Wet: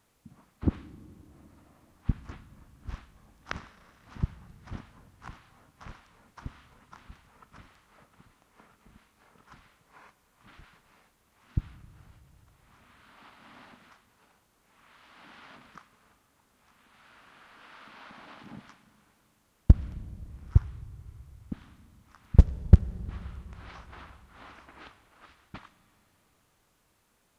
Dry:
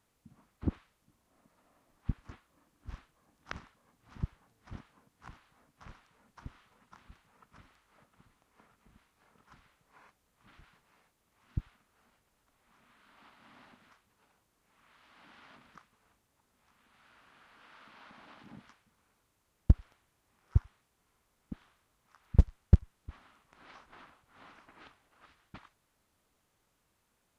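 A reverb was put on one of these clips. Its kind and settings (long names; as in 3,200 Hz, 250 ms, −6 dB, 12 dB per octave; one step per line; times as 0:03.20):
four-comb reverb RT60 3.7 s, combs from 29 ms, DRR 15 dB
level +6 dB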